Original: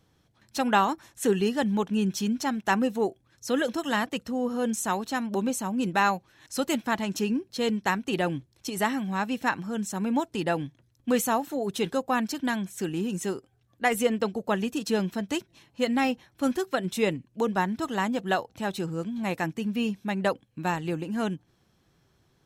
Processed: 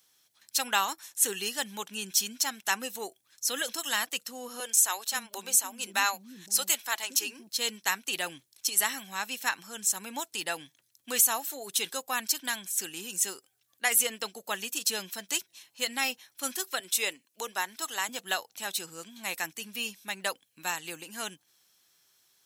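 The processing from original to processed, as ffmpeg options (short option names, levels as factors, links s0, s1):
-filter_complex "[0:a]asettb=1/sr,asplit=3[s0][s1][s2];[s0]atrim=end=4.604[s3];[s1]atrim=start=4.6:end=7.49,asetpts=PTS-STARTPTS,afade=t=in:d=0.004:c=qsin,afade=t=out:st=2.886:d=0.004:c=qsin,acrossover=split=310[s4][s5];[s4]adelay=520[s6];[s6][s5]amix=inputs=2:normalize=0,atrim=end_sample=127449[s7];[s2]atrim=start=7.486[s8];[s3][s7]acrossfade=d=0.004:c1=hsin:c2=qsin[s9];[s9][s8]acrossfade=d=0.004:c1=qsin:c2=hsin,asettb=1/sr,asplit=3[s10][s11][s12];[s10]atrim=end=16.804[s13];[s11]atrim=start=16.8:end=18.09,asetpts=PTS-STARTPTS,afade=t=in:d=0.004:c=qsin,afade=t=out:st=1.286:d=0.004:c=qsin,highpass=290[s14];[s12]atrim=start=18.086[s15];[s13][s14]acrossfade=d=0.004:c1=hsin:c2=qsin[s16];[s16][s15]acrossfade=d=0.004:c1=qsin:c2=hsin,aderivative,alimiter=level_in=10:limit=0.891:release=50:level=0:latency=1,volume=0.355"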